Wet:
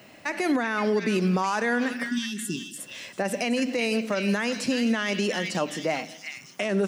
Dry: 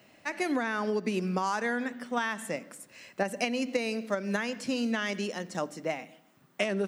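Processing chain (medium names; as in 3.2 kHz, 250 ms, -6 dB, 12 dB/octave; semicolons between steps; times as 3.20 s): spectral selection erased 2.09–2.78 s, 420–2600 Hz; repeats whose band climbs or falls 372 ms, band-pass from 2.6 kHz, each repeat 0.7 oct, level -5 dB; peak limiter -24.5 dBFS, peak gain reduction 10.5 dB; trim +8.5 dB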